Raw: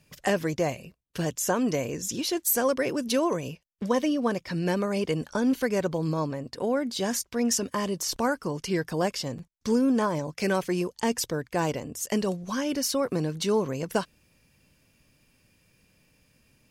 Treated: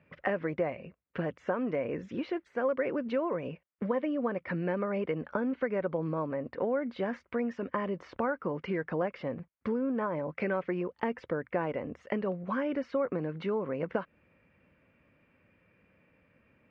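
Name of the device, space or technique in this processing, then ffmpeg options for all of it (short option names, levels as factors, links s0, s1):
bass amplifier: -af "acompressor=threshold=0.0355:ratio=6,highpass=79,equalizer=f=130:t=q:w=4:g=-7,equalizer=f=540:t=q:w=4:g=5,equalizer=f=1300:t=q:w=4:g=5,equalizer=f=2100:t=q:w=4:g=4,lowpass=f=2300:w=0.5412,lowpass=f=2300:w=1.3066"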